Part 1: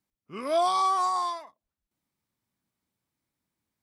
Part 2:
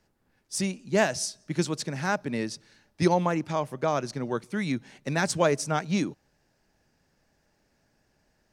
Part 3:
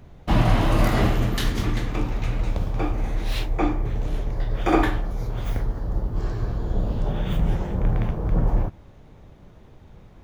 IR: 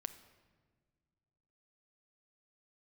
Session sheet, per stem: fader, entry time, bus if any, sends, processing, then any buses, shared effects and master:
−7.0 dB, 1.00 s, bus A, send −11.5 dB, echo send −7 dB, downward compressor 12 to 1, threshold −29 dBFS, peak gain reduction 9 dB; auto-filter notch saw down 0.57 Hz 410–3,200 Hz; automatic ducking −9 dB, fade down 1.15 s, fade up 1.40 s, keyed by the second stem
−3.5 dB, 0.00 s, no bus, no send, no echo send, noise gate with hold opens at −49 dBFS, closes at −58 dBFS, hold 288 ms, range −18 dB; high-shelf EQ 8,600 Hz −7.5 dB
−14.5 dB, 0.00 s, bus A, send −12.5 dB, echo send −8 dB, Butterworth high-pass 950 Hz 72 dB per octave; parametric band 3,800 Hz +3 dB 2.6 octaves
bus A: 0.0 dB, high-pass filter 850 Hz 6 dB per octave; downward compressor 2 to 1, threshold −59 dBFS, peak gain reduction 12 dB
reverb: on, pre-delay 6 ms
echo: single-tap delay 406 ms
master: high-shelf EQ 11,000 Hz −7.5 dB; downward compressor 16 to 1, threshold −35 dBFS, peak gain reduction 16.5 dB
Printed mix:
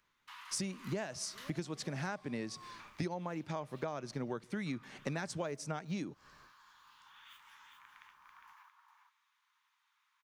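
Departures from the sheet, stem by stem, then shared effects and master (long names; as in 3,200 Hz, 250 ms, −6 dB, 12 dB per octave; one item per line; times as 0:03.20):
stem 2 −3.5 dB → +3.5 dB
stem 3: missing parametric band 3,800 Hz +3 dB 2.6 octaves
master: missing high-shelf EQ 11,000 Hz −7.5 dB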